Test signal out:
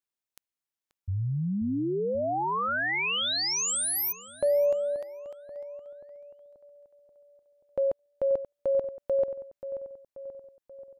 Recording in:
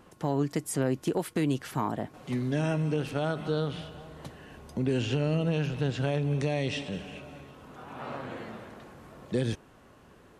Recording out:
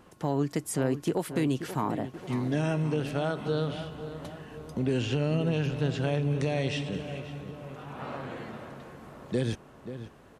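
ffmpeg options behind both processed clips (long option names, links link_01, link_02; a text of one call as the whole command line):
ffmpeg -i in.wav -filter_complex "[0:a]asplit=2[link_01][link_02];[link_02]adelay=533,lowpass=frequency=2300:poles=1,volume=-11dB,asplit=2[link_03][link_04];[link_04]adelay=533,lowpass=frequency=2300:poles=1,volume=0.55,asplit=2[link_05][link_06];[link_06]adelay=533,lowpass=frequency=2300:poles=1,volume=0.55,asplit=2[link_07][link_08];[link_08]adelay=533,lowpass=frequency=2300:poles=1,volume=0.55,asplit=2[link_09][link_10];[link_10]adelay=533,lowpass=frequency=2300:poles=1,volume=0.55,asplit=2[link_11][link_12];[link_12]adelay=533,lowpass=frequency=2300:poles=1,volume=0.55[link_13];[link_01][link_03][link_05][link_07][link_09][link_11][link_13]amix=inputs=7:normalize=0" out.wav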